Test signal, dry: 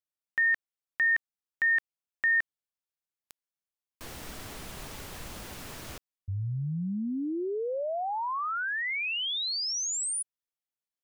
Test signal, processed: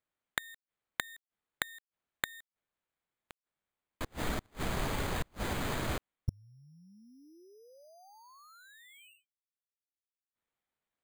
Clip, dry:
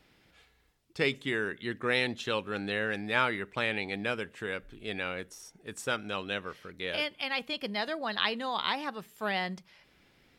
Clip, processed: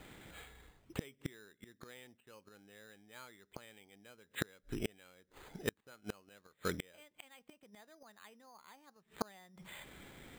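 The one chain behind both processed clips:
gate with flip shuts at −30 dBFS, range −36 dB
bad sample-rate conversion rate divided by 8×, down filtered, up hold
level +10 dB

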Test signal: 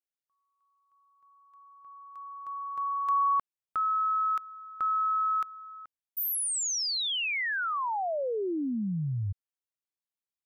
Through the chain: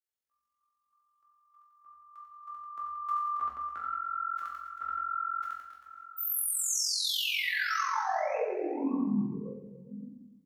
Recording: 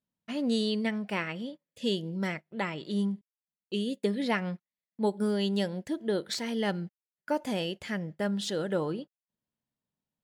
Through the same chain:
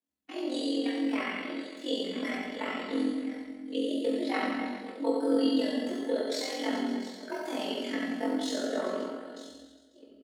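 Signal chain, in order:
delay that plays each chunk backwards 558 ms, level −13.5 dB
resonators tuned to a chord C#3 major, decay 0.31 s
on a send: reverse bouncing-ball delay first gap 80 ms, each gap 1.15×, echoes 5
on the sum: amplitude modulation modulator 44 Hz, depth 80%
in parallel at −2 dB: brickwall limiter −36.5 dBFS
on the sum: coupled-rooms reverb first 0.5 s, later 2 s, from −25 dB, DRR 0.5 dB
frequency shifter +67 Hz
level +8.5 dB

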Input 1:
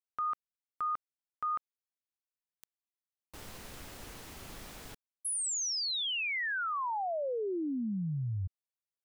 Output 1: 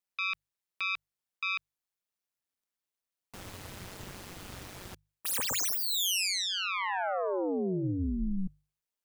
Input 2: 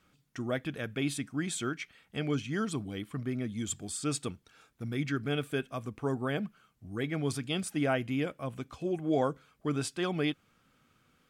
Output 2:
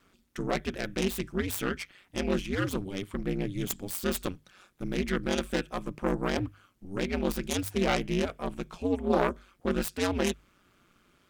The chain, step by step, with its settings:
phase distortion by the signal itself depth 0.28 ms
ring modulation 94 Hz
mains-hum notches 50/100/150 Hz
level +6.5 dB

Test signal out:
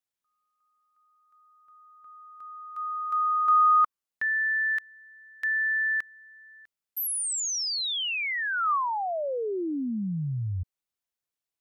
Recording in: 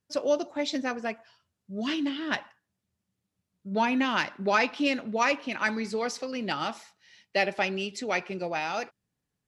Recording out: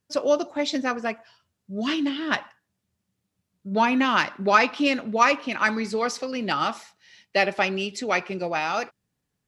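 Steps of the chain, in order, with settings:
dynamic equaliser 1,200 Hz, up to +6 dB, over −45 dBFS, Q 3.9
level +4 dB

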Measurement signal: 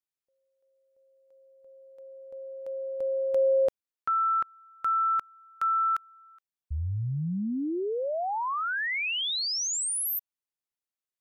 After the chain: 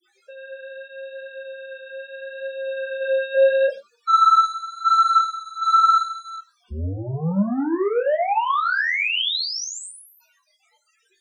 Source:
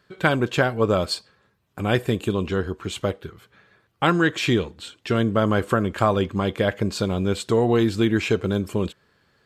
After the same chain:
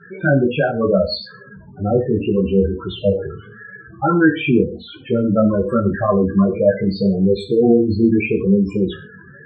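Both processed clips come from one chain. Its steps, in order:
converter with a step at zero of −20.5 dBFS
downward expander −20 dBFS
high-pass filter 110 Hz 6 dB per octave
spectral peaks only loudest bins 8
high-frequency loss of the air 120 metres
reverb whose tail is shaped and stops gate 150 ms falling, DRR 8.5 dB
multi-voice chorus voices 2, 0.76 Hz, delay 18 ms, depth 3.4 ms
level +8 dB

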